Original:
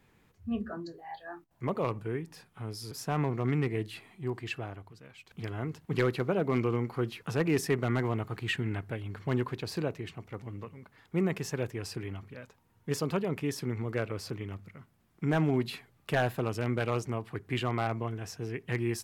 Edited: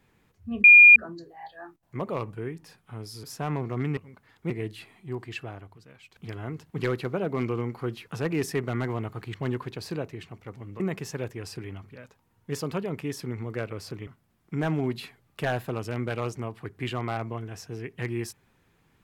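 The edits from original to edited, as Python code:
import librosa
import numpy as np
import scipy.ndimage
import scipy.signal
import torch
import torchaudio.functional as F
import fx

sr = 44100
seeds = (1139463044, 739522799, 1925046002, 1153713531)

y = fx.edit(x, sr, fx.insert_tone(at_s=0.64, length_s=0.32, hz=2420.0, db=-8.0),
    fx.cut(start_s=8.49, length_s=0.71),
    fx.move(start_s=10.66, length_s=0.53, to_s=3.65),
    fx.cut(start_s=14.46, length_s=0.31), tone=tone)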